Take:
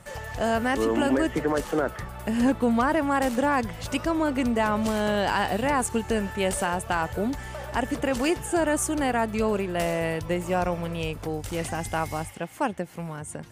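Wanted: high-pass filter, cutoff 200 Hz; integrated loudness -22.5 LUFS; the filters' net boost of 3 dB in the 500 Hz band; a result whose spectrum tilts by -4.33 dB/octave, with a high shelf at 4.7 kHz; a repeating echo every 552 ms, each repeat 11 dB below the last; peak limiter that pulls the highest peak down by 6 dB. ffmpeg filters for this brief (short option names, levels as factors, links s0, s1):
-af "highpass=200,equalizer=f=500:t=o:g=4,highshelf=f=4700:g=-8.5,alimiter=limit=0.15:level=0:latency=1,aecho=1:1:552|1104|1656:0.282|0.0789|0.0221,volume=1.68"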